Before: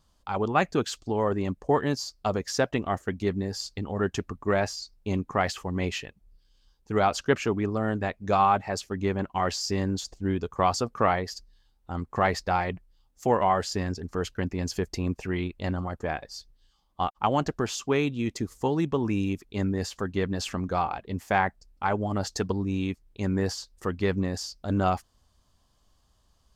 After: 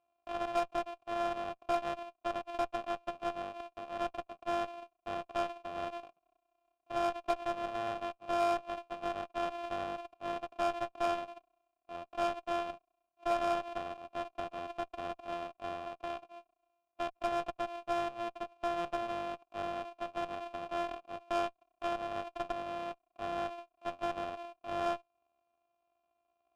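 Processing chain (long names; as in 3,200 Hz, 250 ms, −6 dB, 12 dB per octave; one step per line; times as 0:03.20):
samples sorted by size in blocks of 128 samples
formant filter a
harmonic generator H 8 −21 dB, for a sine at −17.5 dBFS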